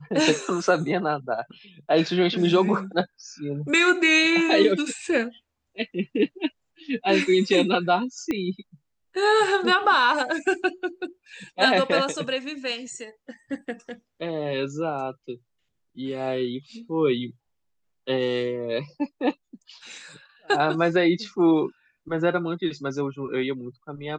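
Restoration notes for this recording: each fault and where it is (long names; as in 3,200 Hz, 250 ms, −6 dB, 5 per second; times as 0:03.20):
0:08.31: click −15 dBFS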